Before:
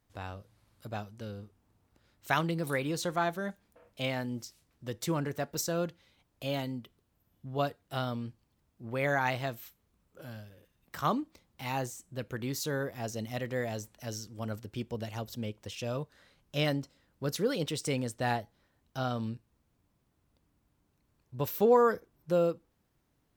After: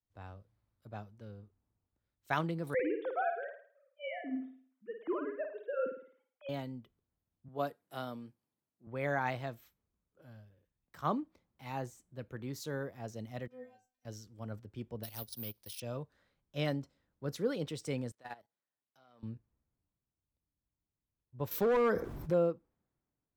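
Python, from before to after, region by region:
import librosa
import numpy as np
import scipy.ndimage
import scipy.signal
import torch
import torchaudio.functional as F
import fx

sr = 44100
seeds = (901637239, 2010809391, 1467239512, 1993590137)

y = fx.chain(x, sr, fx.sine_speech(),
    fx.room_flutter(wall_m=9.2, rt60_s=0.57), at=(2.74, 6.49))
y = fx.chain(y, sr, fx.highpass(hz=180.0, slope=12),
    fx.peak_eq(hz=12000.0, db=12.0, octaves=0.92), at=(7.48, 8.87))
y = fx.chain(y, sr, fx.peak_eq(hz=210.0, db=-4.0, octaves=0.81),
    fx.stiff_resonator(f0_hz=250.0, decay_s=0.37, stiffness=0.002), at=(13.47, 14.05))
y = fx.chain(y, sr, fx.law_mismatch(coded='A'),
    fx.peak_eq(hz=4700.0, db=13.0, octaves=1.1),
    fx.resample_bad(factor=3, down='filtered', up='zero_stuff'), at=(15.03, 15.8))
y = fx.chain(y, sr, fx.halfwave_gain(db=-3.0),
    fx.highpass(hz=720.0, slope=6),
    fx.level_steps(step_db=17), at=(18.11, 19.23))
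y = fx.chain(y, sr, fx.clip_hard(threshold_db=-23.5),
    fx.env_flatten(amount_pct=70), at=(21.51, 22.34))
y = fx.high_shelf(y, sr, hz=2800.0, db=-9.0)
y = fx.notch(y, sr, hz=2800.0, q=27.0)
y = fx.band_widen(y, sr, depth_pct=40)
y = y * 10.0 ** (-5.0 / 20.0)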